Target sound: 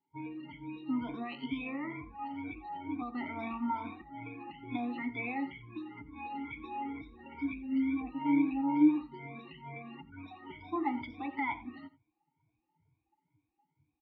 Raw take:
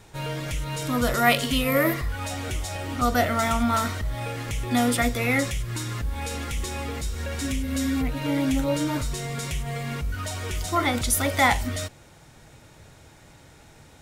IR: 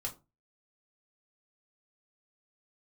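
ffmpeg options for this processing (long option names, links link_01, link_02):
-filter_complex "[0:a]afftfilt=real='re*pow(10,22/40*sin(2*PI*(1.7*log(max(b,1)*sr/1024/100)/log(2)-(2.2)*(pts-256)/sr)))':imag='im*pow(10,22/40*sin(2*PI*(1.7*log(max(b,1)*sr/1024/100)/log(2)-(2.2)*(pts-256)/sr)))':win_size=1024:overlap=0.75,acrossover=split=670|2000[link_01][link_02][link_03];[link_02]dynaudnorm=framelen=690:gausssize=5:maxgain=6dB[link_04];[link_01][link_04][link_03]amix=inputs=3:normalize=0,lowpass=frequency=4400:width=0.5412,lowpass=frequency=4400:width=1.3066,afftdn=noise_reduction=22:noise_floor=-30,alimiter=limit=-8dB:level=0:latency=1:release=147,asplit=3[link_05][link_06][link_07];[link_05]bandpass=frequency=300:width_type=q:width=8,volume=0dB[link_08];[link_06]bandpass=frequency=870:width_type=q:width=8,volume=-6dB[link_09];[link_07]bandpass=frequency=2240:width_type=q:width=8,volume=-9dB[link_10];[link_08][link_09][link_10]amix=inputs=3:normalize=0,aecho=1:1:87:0.126,volume=-3.5dB"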